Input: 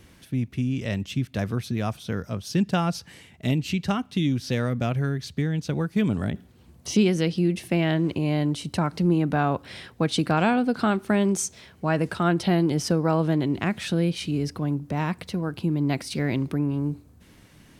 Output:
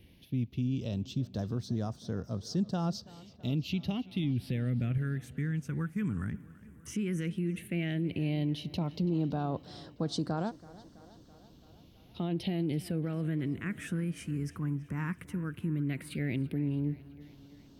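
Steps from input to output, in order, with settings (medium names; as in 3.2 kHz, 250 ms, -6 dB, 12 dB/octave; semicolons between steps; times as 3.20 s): 4.24–4.98 s: bass shelf 400 Hz +7.5 dB; 10.49–12.16 s: room tone, crossfade 0.06 s; peak limiter -17.5 dBFS, peak gain reduction 8.5 dB; phase shifter stages 4, 0.12 Hz, lowest notch 640–2400 Hz; tape echo 330 ms, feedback 73%, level -18 dB, low-pass 5.8 kHz; trim -6 dB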